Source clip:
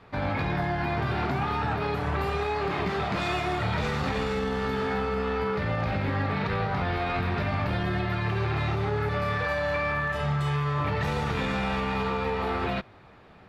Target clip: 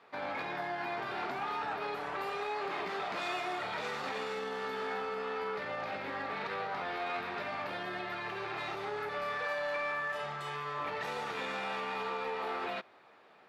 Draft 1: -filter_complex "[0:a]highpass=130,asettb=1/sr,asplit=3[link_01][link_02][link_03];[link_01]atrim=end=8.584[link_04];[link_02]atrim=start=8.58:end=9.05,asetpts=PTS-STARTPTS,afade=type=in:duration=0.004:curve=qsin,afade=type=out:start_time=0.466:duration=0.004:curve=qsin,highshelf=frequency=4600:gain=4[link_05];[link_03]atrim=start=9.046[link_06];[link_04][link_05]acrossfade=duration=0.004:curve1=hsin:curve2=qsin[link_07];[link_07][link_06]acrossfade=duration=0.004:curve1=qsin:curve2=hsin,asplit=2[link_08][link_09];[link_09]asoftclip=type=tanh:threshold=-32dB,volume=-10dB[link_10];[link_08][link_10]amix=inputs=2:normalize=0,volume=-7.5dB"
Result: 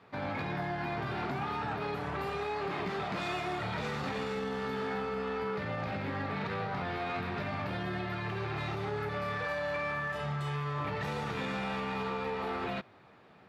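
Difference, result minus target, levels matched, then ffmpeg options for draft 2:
125 Hz band +14.0 dB
-filter_complex "[0:a]highpass=410,asettb=1/sr,asplit=3[link_01][link_02][link_03];[link_01]atrim=end=8.584[link_04];[link_02]atrim=start=8.58:end=9.05,asetpts=PTS-STARTPTS,afade=type=in:duration=0.004:curve=qsin,afade=type=out:start_time=0.466:duration=0.004:curve=qsin,highshelf=frequency=4600:gain=4[link_05];[link_03]atrim=start=9.046[link_06];[link_04][link_05]acrossfade=duration=0.004:curve1=hsin:curve2=qsin[link_07];[link_07][link_06]acrossfade=duration=0.004:curve1=qsin:curve2=hsin,asplit=2[link_08][link_09];[link_09]asoftclip=type=tanh:threshold=-32dB,volume=-10dB[link_10];[link_08][link_10]amix=inputs=2:normalize=0,volume=-7.5dB"

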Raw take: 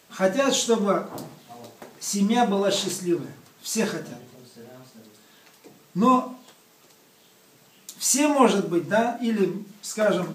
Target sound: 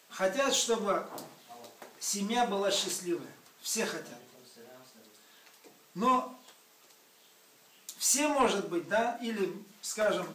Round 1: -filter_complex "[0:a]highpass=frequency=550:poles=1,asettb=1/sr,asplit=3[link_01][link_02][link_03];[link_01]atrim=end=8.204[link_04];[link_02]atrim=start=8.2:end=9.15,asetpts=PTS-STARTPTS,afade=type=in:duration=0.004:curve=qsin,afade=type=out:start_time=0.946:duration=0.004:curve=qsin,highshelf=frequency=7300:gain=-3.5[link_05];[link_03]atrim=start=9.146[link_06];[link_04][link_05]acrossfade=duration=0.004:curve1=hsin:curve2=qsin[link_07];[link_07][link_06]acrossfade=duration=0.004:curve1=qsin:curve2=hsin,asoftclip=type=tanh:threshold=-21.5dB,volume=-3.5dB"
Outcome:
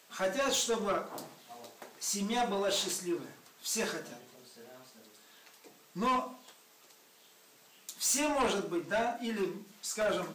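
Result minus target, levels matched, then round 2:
soft clipping: distortion +8 dB
-filter_complex "[0:a]highpass=frequency=550:poles=1,asettb=1/sr,asplit=3[link_01][link_02][link_03];[link_01]atrim=end=8.204[link_04];[link_02]atrim=start=8.2:end=9.15,asetpts=PTS-STARTPTS,afade=type=in:duration=0.004:curve=qsin,afade=type=out:start_time=0.946:duration=0.004:curve=qsin,highshelf=frequency=7300:gain=-3.5[link_05];[link_03]atrim=start=9.146[link_06];[link_04][link_05]acrossfade=duration=0.004:curve1=hsin:curve2=qsin[link_07];[link_07][link_06]acrossfade=duration=0.004:curve1=qsin:curve2=hsin,asoftclip=type=tanh:threshold=-14.5dB,volume=-3.5dB"

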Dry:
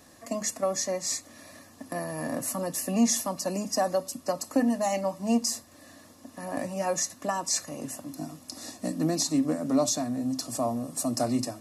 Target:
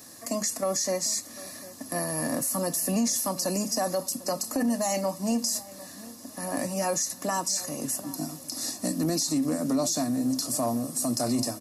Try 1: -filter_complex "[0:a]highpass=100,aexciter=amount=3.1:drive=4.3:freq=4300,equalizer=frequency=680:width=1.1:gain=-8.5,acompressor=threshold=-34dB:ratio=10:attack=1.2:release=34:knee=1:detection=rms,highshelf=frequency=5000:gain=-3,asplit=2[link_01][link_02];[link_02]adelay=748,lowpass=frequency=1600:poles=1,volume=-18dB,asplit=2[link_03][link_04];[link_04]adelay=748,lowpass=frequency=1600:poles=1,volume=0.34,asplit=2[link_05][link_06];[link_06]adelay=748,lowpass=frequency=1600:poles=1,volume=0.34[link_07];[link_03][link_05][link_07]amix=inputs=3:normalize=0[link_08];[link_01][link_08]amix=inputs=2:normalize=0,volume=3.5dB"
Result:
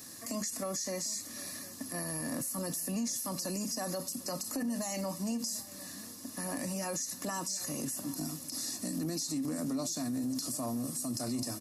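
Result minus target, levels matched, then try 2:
downward compressor: peak gain reduction +8.5 dB; 500 Hz band −2.5 dB
-filter_complex "[0:a]highpass=100,aexciter=amount=3.1:drive=4.3:freq=4300,equalizer=frequency=680:width=1.1:gain=-2,acompressor=threshold=-24.5dB:ratio=10:attack=1.2:release=34:knee=1:detection=rms,highshelf=frequency=5000:gain=-3,asplit=2[link_01][link_02];[link_02]adelay=748,lowpass=frequency=1600:poles=1,volume=-18dB,asplit=2[link_03][link_04];[link_04]adelay=748,lowpass=frequency=1600:poles=1,volume=0.34,asplit=2[link_05][link_06];[link_06]adelay=748,lowpass=frequency=1600:poles=1,volume=0.34[link_07];[link_03][link_05][link_07]amix=inputs=3:normalize=0[link_08];[link_01][link_08]amix=inputs=2:normalize=0,volume=3.5dB"

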